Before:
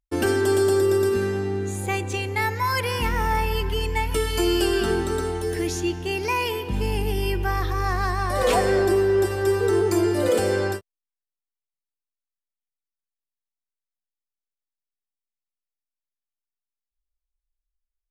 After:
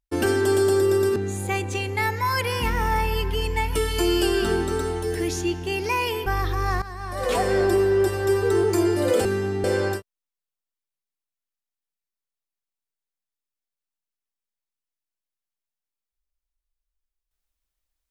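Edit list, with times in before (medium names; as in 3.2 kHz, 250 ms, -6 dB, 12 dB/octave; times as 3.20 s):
1.16–1.55 s: move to 10.43 s
6.65–7.44 s: delete
8.00–8.83 s: fade in, from -15.5 dB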